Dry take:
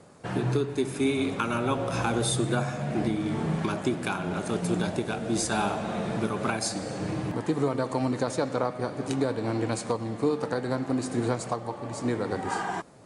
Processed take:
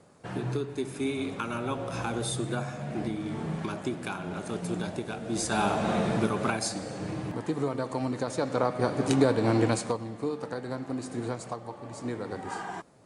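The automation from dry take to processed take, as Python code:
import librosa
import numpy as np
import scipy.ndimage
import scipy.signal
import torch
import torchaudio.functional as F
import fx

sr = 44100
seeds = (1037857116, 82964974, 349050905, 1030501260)

y = fx.gain(x, sr, db=fx.line((5.25, -5.0), (5.89, 4.5), (6.91, -3.5), (8.27, -3.5), (8.89, 4.5), (9.64, 4.5), (10.12, -6.0)))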